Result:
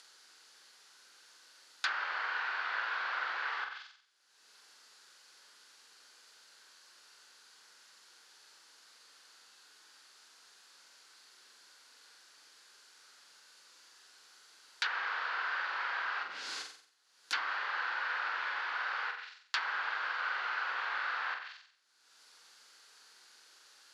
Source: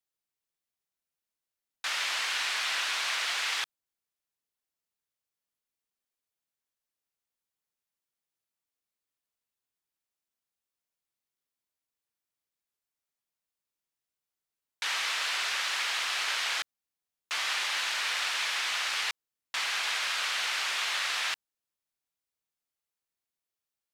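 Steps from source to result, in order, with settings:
0:16.23–0:17.33: wrap-around overflow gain 36 dB
upward compression, threshold −35 dBFS
on a send: flutter between parallel walls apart 7.8 metres, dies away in 0.56 s
0:18.10–0:18.85: on the sum: surface crackle 180 per second −38 dBFS
loudspeaker in its box 440–9,300 Hz, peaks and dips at 650 Hz −7 dB, 1,500 Hz +8 dB, 2,300 Hz −3 dB, 4,500 Hz +7 dB, 8,500 Hz −7 dB
treble cut that deepens with the level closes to 1,200 Hz, closed at −26 dBFS

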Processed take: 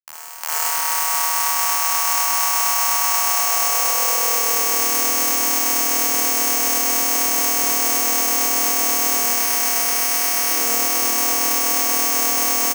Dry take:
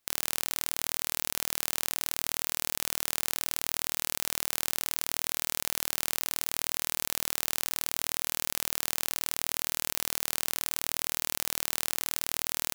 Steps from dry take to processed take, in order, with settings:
fade in at the beginning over 3.17 s
0:09.16–0:10.50: low-shelf EQ 360 Hz −4.5 dB
in parallel at −1.5 dB: compressor whose output falls as the input rises −39 dBFS, ratio −1
on the sum: log-companded quantiser 2 bits
single-sideband voice off tune −120 Hz 280–3,300 Hz
double-tracking delay 13 ms −4.5 dB
on a send: flutter between parallel walls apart 8.7 metres, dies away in 0.66 s
on the sum: spring reverb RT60 2 s, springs 55 ms, chirp 70 ms, DRR −2.5 dB
bad sample-rate conversion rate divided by 6×, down filtered, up zero stuff
high-pass filter sweep 910 Hz → 330 Hz, 0:03.11–0:04.95
boost into a limiter +19.5 dB
feedback echo at a low word length 516 ms, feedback 80%, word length 6 bits, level −6.5 dB
level −3 dB

